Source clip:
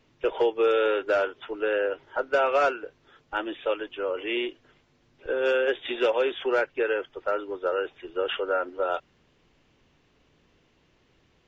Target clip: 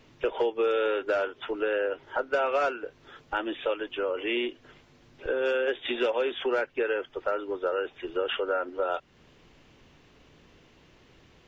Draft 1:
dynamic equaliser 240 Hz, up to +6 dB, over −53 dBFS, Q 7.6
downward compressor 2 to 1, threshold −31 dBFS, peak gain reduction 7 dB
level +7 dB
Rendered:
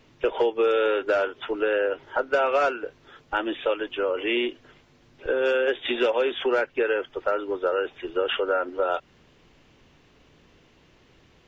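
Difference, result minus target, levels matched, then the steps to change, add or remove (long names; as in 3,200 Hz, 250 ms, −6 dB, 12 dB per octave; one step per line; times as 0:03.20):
downward compressor: peak gain reduction −4 dB
change: downward compressor 2 to 1, threshold −39 dBFS, peak gain reduction 11 dB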